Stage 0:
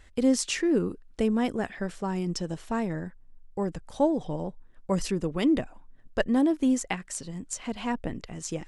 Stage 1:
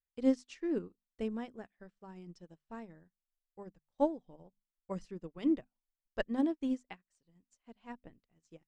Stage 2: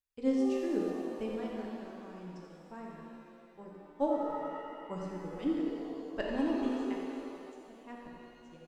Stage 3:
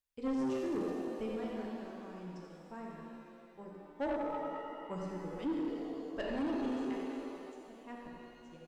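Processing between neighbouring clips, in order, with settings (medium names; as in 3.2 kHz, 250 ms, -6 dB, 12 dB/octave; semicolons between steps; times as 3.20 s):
low-pass 6.2 kHz 12 dB/octave; hum notches 50/100/150/200/250 Hz; upward expansion 2.5:1, over -46 dBFS; trim -4 dB
echo from a far wall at 15 m, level -8 dB; pitch-shifted reverb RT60 2.4 s, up +7 st, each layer -8 dB, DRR -1.5 dB; trim -2 dB
saturation -30 dBFS, distortion -11 dB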